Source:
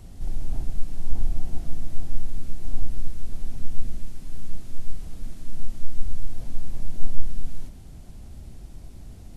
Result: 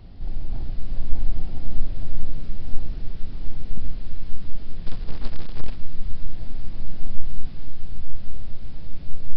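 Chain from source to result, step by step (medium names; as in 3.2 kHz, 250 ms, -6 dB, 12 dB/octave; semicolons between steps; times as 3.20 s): ever faster or slower copies 261 ms, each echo -4 st, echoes 3; 4.86–5.76 s: companded quantiser 6-bit; resampled via 11.025 kHz; 2.29–3.78 s: loudspeaker Doppler distortion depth 0.98 ms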